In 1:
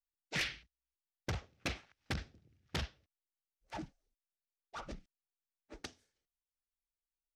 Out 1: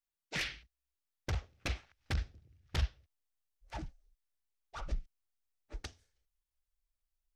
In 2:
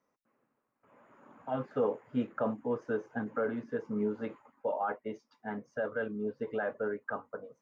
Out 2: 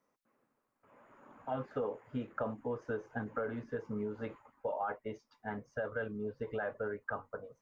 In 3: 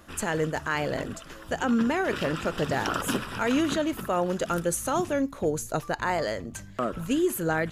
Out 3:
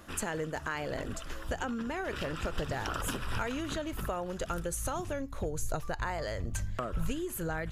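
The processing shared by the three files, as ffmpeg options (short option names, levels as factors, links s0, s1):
-af "acompressor=threshold=0.0282:ratio=6,asubboost=boost=8:cutoff=80"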